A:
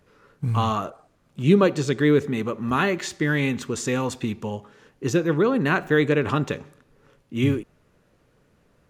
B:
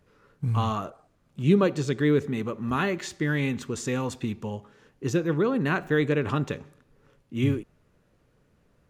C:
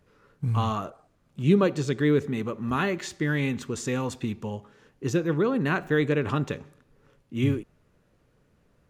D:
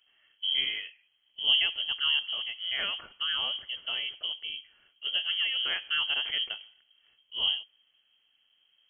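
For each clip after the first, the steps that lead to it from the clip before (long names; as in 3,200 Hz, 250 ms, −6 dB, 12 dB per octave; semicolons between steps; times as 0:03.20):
low-shelf EQ 190 Hz +4.5 dB; level −5 dB
no processing that can be heard
sub-octave generator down 2 octaves, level −1 dB; voice inversion scrambler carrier 3,200 Hz; level −7.5 dB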